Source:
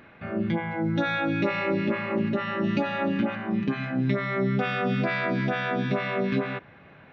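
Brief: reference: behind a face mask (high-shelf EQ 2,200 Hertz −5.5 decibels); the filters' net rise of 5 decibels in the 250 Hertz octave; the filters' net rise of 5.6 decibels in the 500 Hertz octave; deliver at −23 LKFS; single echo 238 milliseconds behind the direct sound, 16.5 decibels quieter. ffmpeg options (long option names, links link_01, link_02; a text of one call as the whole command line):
ffmpeg -i in.wav -af "equalizer=frequency=250:width_type=o:gain=5,equalizer=frequency=500:width_type=o:gain=6,highshelf=frequency=2200:gain=-5.5,aecho=1:1:238:0.15" out.wav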